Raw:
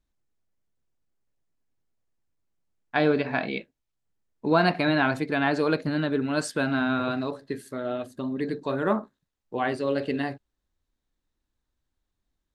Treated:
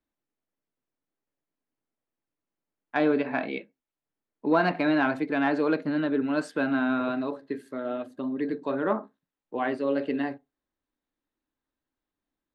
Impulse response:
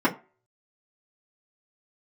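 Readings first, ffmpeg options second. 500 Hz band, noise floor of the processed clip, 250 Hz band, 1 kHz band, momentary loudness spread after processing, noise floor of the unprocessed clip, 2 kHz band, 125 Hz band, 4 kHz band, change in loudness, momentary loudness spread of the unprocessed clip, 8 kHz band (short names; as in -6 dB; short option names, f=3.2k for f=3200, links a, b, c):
-1.5 dB, under -85 dBFS, +0.5 dB, -1.5 dB, 10 LU, -83 dBFS, -2.5 dB, -8.0 dB, -7.0 dB, -1.0 dB, 10 LU, under -10 dB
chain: -filter_complex "[0:a]acrossover=split=160 3300:gain=0.2 1 0.251[a][b][c];[a][b][c]amix=inputs=3:normalize=0,acontrast=55,asplit=2[d][e];[1:a]atrim=start_sample=2205,afade=t=out:st=0.19:d=0.01,atrim=end_sample=8820[f];[e][f]afir=irnorm=-1:irlink=0,volume=-30dB[g];[d][g]amix=inputs=2:normalize=0,volume=-8dB"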